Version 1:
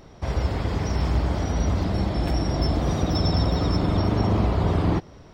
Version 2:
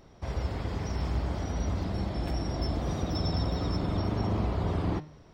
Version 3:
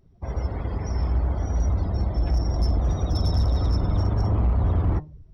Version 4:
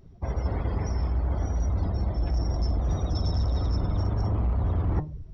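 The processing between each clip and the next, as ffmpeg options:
-af "bandreject=f=152.1:t=h:w=4,bandreject=f=304.2:t=h:w=4,bandreject=f=456.3:t=h:w=4,bandreject=f=608.4:t=h:w=4,bandreject=f=760.5:t=h:w=4,bandreject=f=912.6:t=h:w=4,bandreject=f=1.0647k:t=h:w=4,bandreject=f=1.2168k:t=h:w=4,bandreject=f=1.3689k:t=h:w=4,bandreject=f=1.521k:t=h:w=4,bandreject=f=1.6731k:t=h:w=4,bandreject=f=1.8252k:t=h:w=4,bandreject=f=1.9773k:t=h:w=4,bandreject=f=2.1294k:t=h:w=4,bandreject=f=2.2815k:t=h:w=4,bandreject=f=2.4336k:t=h:w=4,bandreject=f=2.5857k:t=h:w=4,bandreject=f=2.7378k:t=h:w=4,bandreject=f=2.8899k:t=h:w=4,bandreject=f=3.042k:t=h:w=4,bandreject=f=3.1941k:t=h:w=4,bandreject=f=3.3462k:t=h:w=4,bandreject=f=3.4983k:t=h:w=4,bandreject=f=3.6504k:t=h:w=4,bandreject=f=3.8025k:t=h:w=4,bandreject=f=3.9546k:t=h:w=4,bandreject=f=4.1067k:t=h:w=4,bandreject=f=4.2588k:t=h:w=4,bandreject=f=4.4109k:t=h:w=4,volume=-7.5dB"
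-af "afftdn=nr=21:nf=-45,asubboost=boost=5:cutoff=95,volume=19.5dB,asoftclip=hard,volume=-19.5dB,volume=3dB"
-af "areverse,acompressor=threshold=-30dB:ratio=6,areverse,aresample=16000,aresample=44100,volume=6.5dB"

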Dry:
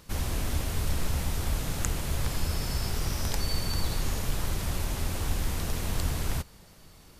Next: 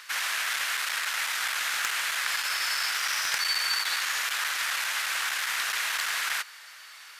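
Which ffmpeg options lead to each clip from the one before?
-filter_complex "[0:a]aeval=exprs='0.335*sin(PI/2*2.82*val(0)/0.335)':c=same,highpass=f=1.6k:t=q:w=2,asplit=2[a][b];[b]highpass=f=720:p=1,volume=10dB,asoftclip=type=tanh:threshold=-5.5dB[c];[a][c]amix=inputs=2:normalize=0,lowpass=f=4.6k:p=1,volume=-6dB,volume=-6.5dB"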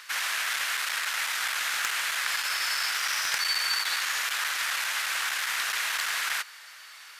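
-af anull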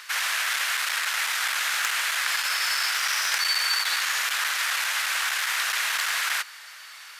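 -af "highpass=410,asoftclip=type=tanh:threshold=-15dB,volume=3.5dB"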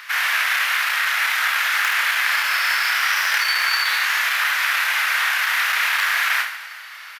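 -filter_complex "[0:a]equalizer=f=125:t=o:w=1:g=-4,equalizer=f=250:t=o:w=1:g=-6,equalizer=f=500:t=o:w=1:g=-3,equalizer=f=2k:t=o:w=1:g=3,equalizer=f=4k:t=o:w=1:g=-3,equalizer=f=8k:t=o:w=1:g=-11,asplit=2[a][b];[b]aecho=0:1:30|75|142.5|243.8|395.6:0.631|0.398|0.251|0.158|0.1[c];[a][c]amix=inputs=2:normalize=0,volume=4.5dB"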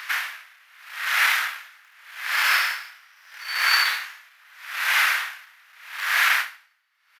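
-af "aeval=exprs='val(0)*pow(10,-36*(0.5-0.5*cos(2*PI*0.8*n/s))/20)':c=same,volume=1.5dB"

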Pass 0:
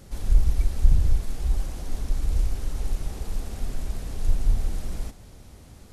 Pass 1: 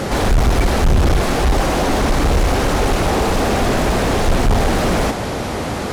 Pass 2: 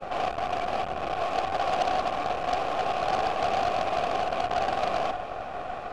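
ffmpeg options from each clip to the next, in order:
-filter_complex "[0:a]asplit=2[a][b];[b]highpass=f=720:p=1,volume=46dB,asoftclip=type=tanh:threshold=-4dB[c];[a][c]amix=inputs=2:normalize=0,lowpass=f=1.1k:p=1,volume=-6dB"
-filter_complex "[0:a]agate=range=-33dB:threshold=-19dB:ratio=3:detection=peak,asplit=3[a][b][c];[a]bandpass=f=730:t=q:w=8,volume=0dB[d];[b]bandpass=f=1.09k:t=q:w=8,volume=-6dB[e];[c]bandpass=f=2.44k:t=q:w=8,volume=-9dB[f];[d][e][f]amix=inputs=3:normalize=0,aeval=exprs='0.168*(cos(1*acos(clip(val(0)/0.168,-1,1)))-cos(1*PI/2))+0.0335*(cos(6*acos(clip(val(0)/0.168,-1,1)))-cos(6*PI/2))+0.0376*(cos(8*acos(clip(val(0)/0.168,-1,1)))-cos(8*PI/2))':c=same"

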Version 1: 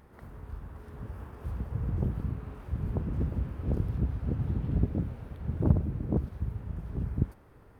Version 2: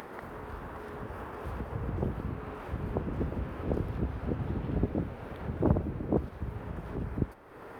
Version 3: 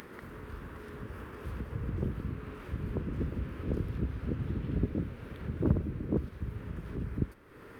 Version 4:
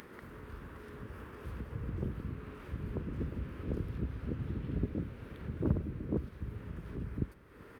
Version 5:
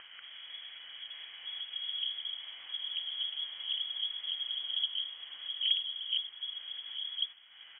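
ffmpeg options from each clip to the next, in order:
-filter_complex "[0:a]bass=f=250:g=-12,treble=f=4k:g=-7,acrossover=split=110[a][b];[b]acompressor=mode=upward:threshold=-42dB:ratio=2.5[c];[a][c]amix=inputs=2:normalize=0,volume=7dB"
-af "equalizer=f=760:t=o:w=1:g=-14"
-af "aecho=1:1:386:0.0668,volume=-3.5dB"
-af "lowpass=f=2.9k:t=q:w=0.5098,lowpass=f=2.9k:t=q:w=0.6013,lowpass=f=2.9k:t=q:w=0.9,lowpass=f=2.9k:t=q:w=2.563,afreqshift=-3400"

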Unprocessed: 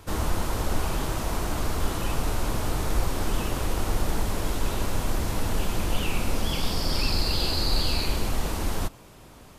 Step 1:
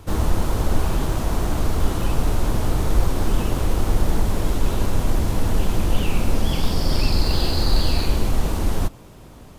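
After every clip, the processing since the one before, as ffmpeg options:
-filter_complex "[0:a]asplit=2[a][b];[b]acrusher=samples=17:mix=1:aa=0.000001,volume=-8dB[c];[a][c]amix=inputs=2:normalize=0,lowshelf=f=400:g=4.5"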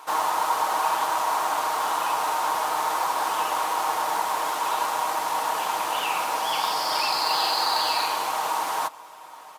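-af "highpass=f=930:t=q:w=3.6,aecho=1:1:6.4:0.38,volume=1.5dB"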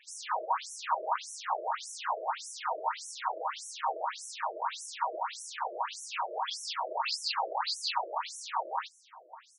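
-af "tremolo=f=250:d=0.519,afftfilt=real='re*between(b*sr/1024,460*pow(7900/460,0.5+0.5*sin(2*PI*1.7*pts/sr))/1.41,460*pow(7900/460,0.5+0.5*sin(2*PI*1.7*pts/sr))*1.41)':imag='im*between(b*sr/1024,460*pow(7900/460,0.5+0.5*sin(2*PI*1.7*pts/sr))/1.41,460*pow(7900/460,0.5+0.5*sin(2*PI*1.7*pts/sr))*1.41)':win_size=1024:overlap=0.75"

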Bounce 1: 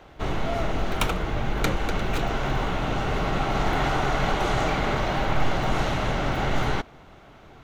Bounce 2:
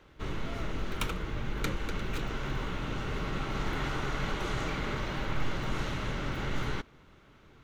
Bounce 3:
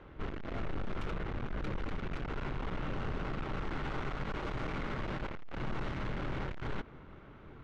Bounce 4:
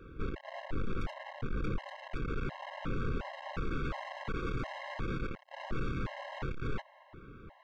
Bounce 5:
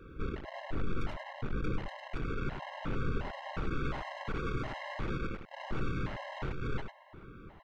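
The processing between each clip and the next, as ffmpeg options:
-af "equalizer=f=720:w=2.9:g=-12,volume=-7.5dB"
-filter_complex "[0:a]acrossover=split=6400[a][b];[a]alimiter=level_in=2.5dB:limit=-24dB:level=0:latency=1:release=79,volume=-2.5dB[c];[c][b]amix=inputs=2:normalize=0,aeval=exprs='(tanh(126*val(0)+0.45)-tanh(0.45))/126':c=same,adynamicsmooth=sensitivity=4.5:basefreq=2.2k,volume=8dB"
-af "afftfilt=real='re*gt(sin(2*PI*1.4*pts/sr)*(1-2*mod(floor(b*sr/1024/540),2)),0)':imag='im*gt(sin(2*PI*1.4*pts/sr)*(1-2*mod(floor(b*sr/1024/540),2)),0)':win_size=1024:overlap=0.75,volume=3dB"
-af "aecho=1:1:100:0.447"

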